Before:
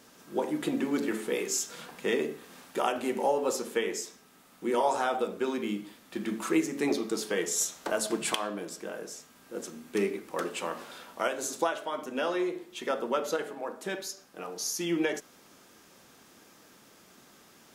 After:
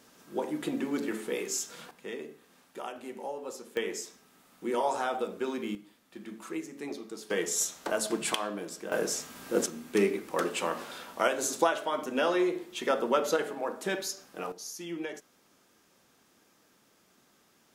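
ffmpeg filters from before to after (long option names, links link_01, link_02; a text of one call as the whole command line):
ffmpeg -i in.wav -af "asetnsamples=nb_out_samples=441:pad=0,asendcmd='1.91 volume volume -11dB;3.77 volume volume -2.5dB;5.75 volume volume -10.5dB;7.3 volume volume -0.5dB;8.92 volume volume 10.5dB;9.66 volume volume 3dB;14.52 volume volume -8.5dB',volume=-2.5dB" out.wav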